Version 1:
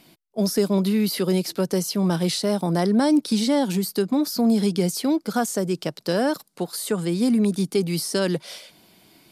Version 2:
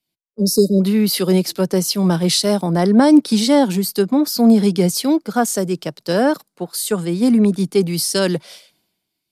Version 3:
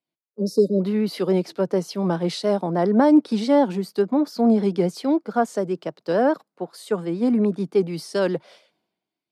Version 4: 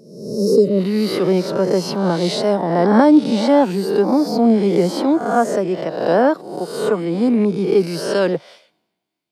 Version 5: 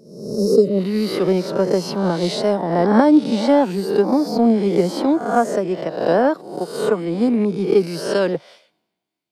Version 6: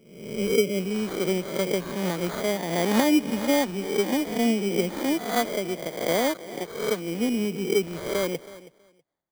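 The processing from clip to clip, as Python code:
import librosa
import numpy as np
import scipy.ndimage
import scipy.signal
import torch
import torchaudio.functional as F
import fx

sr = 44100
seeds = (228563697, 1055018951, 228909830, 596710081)

y1 = fx.spec_erase(x, sr, start_s=0.33, length_s=0.48, low_hz=590.0, high_hz=3700.0)
y1 = fx.band_widen(y1, sr, depth_pct=100)
y1 = y1 * librosa.db_to_amplitude(6.0)
y2 = fx.vibrato(y1, sr, rate_hz=7.0, depth_cents=44.0)
y2 = fx.bandpass_q(y2, sr, hz=630.0, q=0.56)
y2 = y2 * librosa.db_to_amplitude(-2.0)
y3 = fx.spec_swells(y2, sr, rise_s=0.84)
y3 = y3 * librosa.db_to_amplitude(3.5)
y4 = fx.transient(y3, sr, attack_db=5, sustain_db=0)
y4 = y4 * librosa.db_to_amplitude(-2.5)
y5 = fx.sample_hold(y4, sr, seeds[0], rate_hz=2700.0, jitter_pct=0)
y5 = fx.echo_feedback(y5, sr, ms=323, feedback_pct=17, wet_db=-18.0)
y5 = y5 * librosa.db_to_amplitude(-8.0)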